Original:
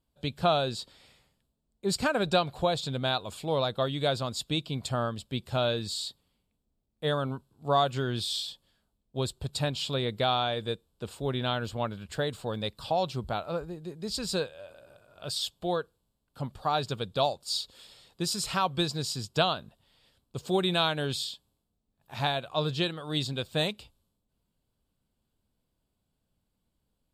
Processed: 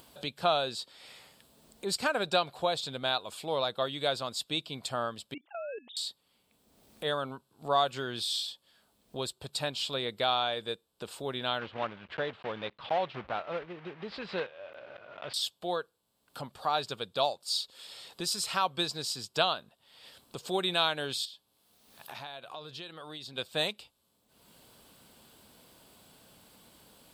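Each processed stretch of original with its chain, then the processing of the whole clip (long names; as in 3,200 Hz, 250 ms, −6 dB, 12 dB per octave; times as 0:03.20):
0:05.34–0:05.97: three sine waves on the formant tracks + output level in coarse steps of 18 dB
0:11.59–0:15.34: one scale factor per block 3 bits + low-pass filter 3,000 Hz 24 dB per octave
0:21.25–0:23.38: parametric band 7,700 Hz −5 dB 0.2 octaves + downward compressor 3 to 1, threshold −46 dBFS + one half of a high-frequency compander encoder only
whole clip: high-pass filter 540 Hz 6 dB per octave; notch filter 7,000 Hz, Q 21; upward compression, threshold −36 dBFS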